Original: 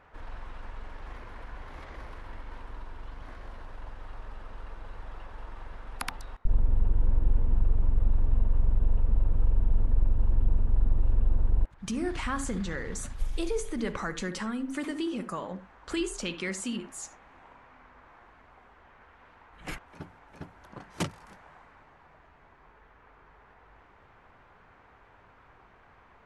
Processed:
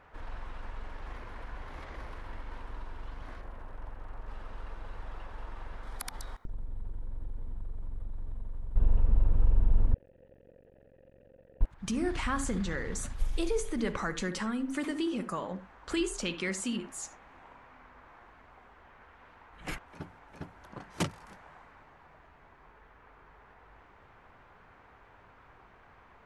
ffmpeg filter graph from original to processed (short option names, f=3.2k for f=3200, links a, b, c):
-filter_complex "[0:a]asettb=1/sr,asplit=3[a][b][c];[a]atrim=end=3.414[d];[b]atrim=start=3.41:end=4.28,asetpts=PTS-STARTPTS,afade=t=in:d=0.004:c=qsin,afade=t=out:st=0.866:d=0.004:c=qsin,equalizer=f=5k:t=o:w=1.5:g=-14.5,aeval=exprs='sgn(val(0))*max(abs(val(0))-0.00126,0)':c=same[e];[c]atrim=start=4.276[f];[d][e]acrossfade=d=0.004:c1=hsin:c2=qsin[g];[g][f]acrossfade=d=0.004:c1=qsin:c2=hsin,asettb=1/sr,asplit=3[h][i][j];[h]atrim=end=5.834[k];[i]atrim=start=5.83:end=8.76,asetpts=PTS-STARTPTS,afade=t=in:d=0.004:c=qsin,afade=t=out:st=2.926:d=0.004:c=qsin,highshelf=f=3.8k:g=8.5,bandreject=f=2.7k:w=5.5,acompressor=threshold=-33dB:ratio=12:attack=3.2:release=140:knee=1:detection=peak[l];[j]atrim=start=8.756[m];[k][l]acrossfade=d=0.004:c1=hsin:c2=qsin[n];[n][m]acrossfade=d=0.004:c1=qsin:c2=hsin,asettb=1/sr,asplit=3[o][p][q];[o]atrim=end=9.944[r];[p]atrim=start=9.94:end=11.61,asetpts=PTS-STARTPTS,afade=t=in:d=0.004:c=qsin,afade=t=out:st=1.666:d=0.004:c=qsin,volume=24dB,asoftclip=hard,volume=-24dB,asplit=3[s][t][u];[s]bandpass=f=530:t=q:w=8,volume=0dB[v];[t]bandpass=f=1.84k:t=q:w=8,volume=-6dB[w];[u]bandpass=f=2.48k:t=q:w=8,volume=-9dB[x];[v][w][x]amix=inputs=3:normalize=0[y];[q]atrim=start=11.606[z];[r][y]acrossfade=d=0.004:c1=hsin:c2=qsin[aa];[aa][z]acrossfade=d=0.004:c1=qsin:c2=hsin"